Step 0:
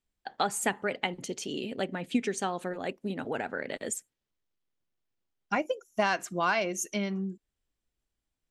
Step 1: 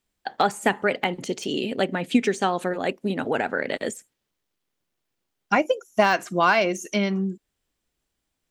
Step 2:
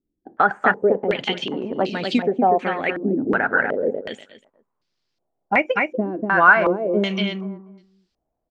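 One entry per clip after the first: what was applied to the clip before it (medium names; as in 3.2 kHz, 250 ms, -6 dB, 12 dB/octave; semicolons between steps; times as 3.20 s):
de-esser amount 100%; bass shelf 81 Hz -9 dB; trim +9 dB
feedback delay 242 ms, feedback 18%, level -4 dB; step-sequenced low-pass 2.7 Hz 320–4800 Hz; trim -1 dB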